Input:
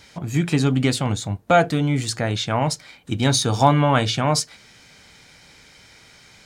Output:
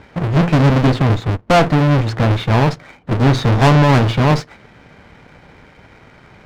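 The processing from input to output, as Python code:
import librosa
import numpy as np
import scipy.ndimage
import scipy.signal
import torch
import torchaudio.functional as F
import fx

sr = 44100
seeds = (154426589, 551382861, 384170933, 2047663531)

y = fx.halfwave_hold(x, sr)
y = scipy.signal.sosfilt(scipy.signal.bessel(2, 1500.0, 'lowpass', norm='mag', fs=sr, output='sos'), y)
y = fx.clip_asym(y, sr, top_db=-26.5, bottom_db=-7.5)
y = fx.leveller(y, sr, passes=1)
y = y * 10.0 ** (4.0 / 20.0)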